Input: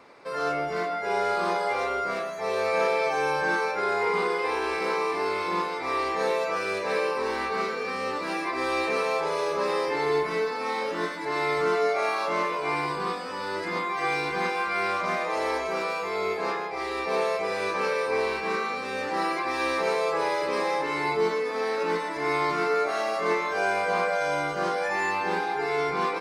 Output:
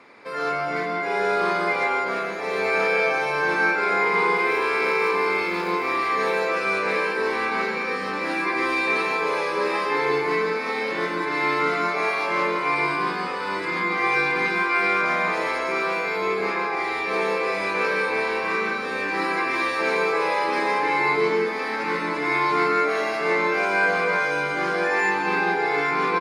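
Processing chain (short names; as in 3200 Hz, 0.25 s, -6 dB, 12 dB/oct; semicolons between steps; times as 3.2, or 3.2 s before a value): feedback echo 0.835 s, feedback 55%, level -14 dB; 4.35–6.36 crackle 150/s -35 dBFS; reverb RT60 0.50 s, pre-delay 0.129 s, DRR 3 dB; WMA 128 kbps 48000 Hz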